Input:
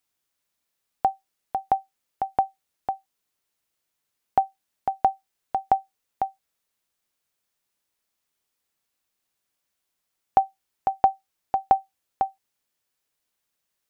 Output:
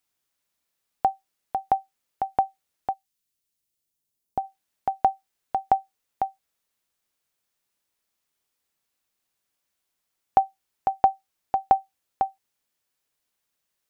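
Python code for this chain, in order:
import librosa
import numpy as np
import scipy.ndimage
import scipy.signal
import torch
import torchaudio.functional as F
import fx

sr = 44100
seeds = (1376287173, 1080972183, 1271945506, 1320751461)

y = fx.peak_eq(x, sr, hz=fx.line((2.92, 640.0), (4.43, 1900.0)), db=-14.0, octaves=2.7, at=(2.92, 4.43), fade=0.02)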